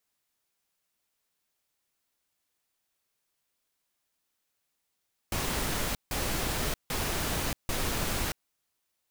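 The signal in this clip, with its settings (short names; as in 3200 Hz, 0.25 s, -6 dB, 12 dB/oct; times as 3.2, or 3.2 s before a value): noise bursts pink, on 0.63 s, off 0.16 s, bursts 4, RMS -30.5 dBFS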